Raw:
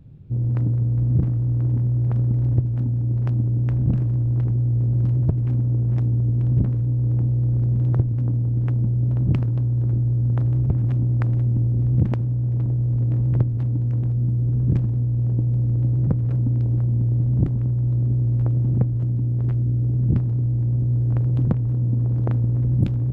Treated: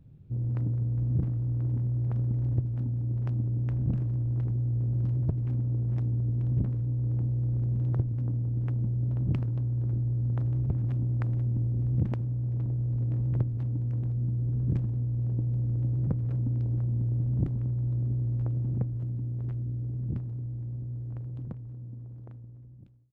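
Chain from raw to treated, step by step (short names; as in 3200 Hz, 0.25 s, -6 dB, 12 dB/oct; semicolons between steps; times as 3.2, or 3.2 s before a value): ending faded out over 5.33 s; gain -8 dB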